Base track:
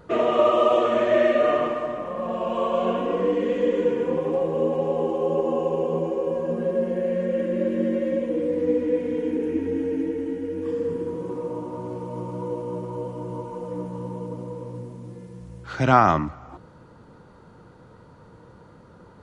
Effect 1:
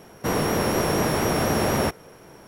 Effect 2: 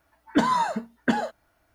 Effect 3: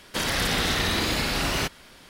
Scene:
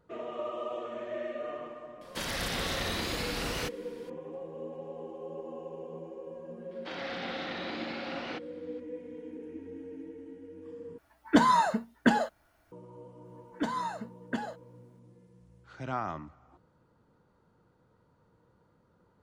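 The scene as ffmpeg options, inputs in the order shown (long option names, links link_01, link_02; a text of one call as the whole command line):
ffmpeg -i bed.wav -i cue0.wav -i cue1.wav -i cue2.wav -filter_complex "[3:a]asplit=2[link_01][link_02];[2:a]asplit=2[link_03][link_04];[0:a]volume=-18dB[link_05];[link_02]highpass=180,equalizer=frequency=290:width_type=q:width=4:gain=8,equalizer=frequency=740:width_type=q:width=4:gain=9,equalizer=frequency=1400:width_type=q:width=4:gain=4,equalizer=frequency=2200:width_type=q:width=4:gain=3,lowpass=frequency=4300:width=0.5412,lowpass=frequency=4300:width=1.3066[link_06];[link_05]asplit=2[link_07][link_08];[link_07]atrim=end=10.984[link_09];[link_03]atrim=end=1.74,asetpts=PTS-STARTPTS,volume=-0.5dB[link_10];[link_08]atrim=start=12.716[link_11];[link_01]atrim=end=2.09,asetpts=PTS-STARTPTS,volume=-9dB,afade=type=in:duration=0.004:curve=hsin,afade=type=out:start_time=2.086:duration=0.004:curve=hsin,adelay=2010[link_12];[link_06]atrim=end=2.09,asetpts=PTS-STARTPTS,volume=-15dB,afade=type=in:duration=0.004:curve=hsin,afade=type=out:start_time=2.086:duration=0.004:curve=hsin,adelay=6710[link_13];[link_04]atrim=end=1.74,asetpts=PTS-STARTPTS,volume=-11dB,afade=type=in:duration=0.004:curve=hsin,afade=type=out:start_time=1.736:duration=0.004:curve=hsin,adelay=13250[link_14];[link_09][link_10]acrossfade=duration=0.004:curve1=hsin:curve2=hsin[link_15];[link_15][link_11]acrossfade=duration=0.004:curve1=hsin:curve2=hsin[link_16];[link_16][link_12][link_13][link_14]amix=inputs=4:normalize=0" out.wav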